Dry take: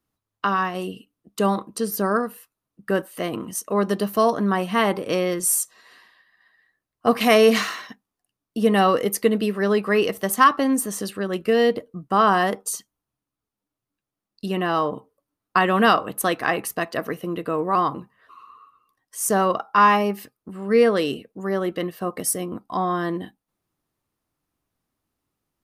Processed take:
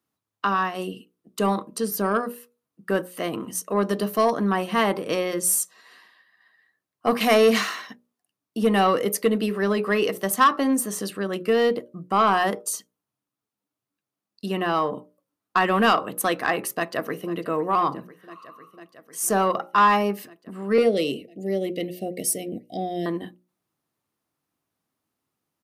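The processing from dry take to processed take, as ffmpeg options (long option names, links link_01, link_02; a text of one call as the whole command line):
ffmpeg -i in.wav -filter_complex "[0:a]asplit=2[link_01][link_02];[link_02]afade=type=in:start_time=16.77:duration=0.01,afade=type=out:start_time=17.36:duration=0.01,aecho=0:1:500|1000|1500|2000|2500|3000|3500|4000|4500|5000|5500|6000:0.125893|0.107009|0.0909574|0.0773138|0.0657167|0.0558592|0.0474803|0.0403583|0.0343045|0.0291588|0.024785|0.0210673[link_03];[link_01][link_03]amix=inputs=2:normalize=0,asettb=1/sr,asplit=3[link_04][link_05][link_06];[link_04]atrim=end=20.784[link_07];[link_05]atrim=start=20.78:end=23.06,asetpts=PTS-STARTPTS,afade=type=in:duration=0.004:curve=qsin,afade=type=out:start_time=2.276:duration=0.004:curve=qsin,asuperstop=centerf=1200:order=12:qfactor=0.95[link_08];[link_06]atrim=start=23.056[link_09];[link_07][link_08]acrossfade=duration=0.004:curve1=hsin:curve2=qsin[link_10];[link_10][link_09]acrossfade=duration=0.004:curve1=qsin:curve2=hsin,highpass=120,acontrast=72,bandreject=frequency=60:width_type=h:width=6,bandreject=frequency=120:width_type=h:width=6,bandreject=frequency=180:width_type=h:width=6,bandreject=frequency=240:width_type=h:width=6,bandreject=frequency=300:width_type=h:width=6,bandreject=frequency=360:width_type=h:width=6,bandreject=frequency=420:width_type=h:width=6,bandreject=frequency=480:width_type=h:width=6,bandreject=frequency=540:width_type=h:width=6,bandreject=frequency=600:width_type=h:width=6,volume=-7dB" out.wav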